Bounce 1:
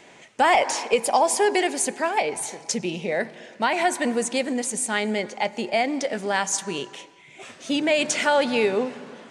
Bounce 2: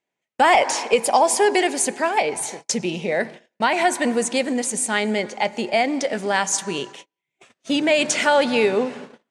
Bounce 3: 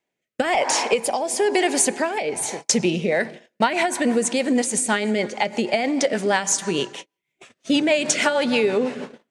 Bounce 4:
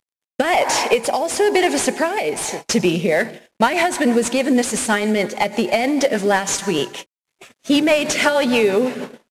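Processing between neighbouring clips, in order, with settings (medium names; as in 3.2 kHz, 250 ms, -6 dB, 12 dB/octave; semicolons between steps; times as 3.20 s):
gate -38 dBFS, range -37 dB; trim +3 dB
compression, threshold -20 dBFS, peak gain reduction 9 dB; rotary cabinet horn 1 Hz, later 6.3 Hz, at 2.75 s; trim +6 dB
CVSD coder 64 kbps; trim +4 dB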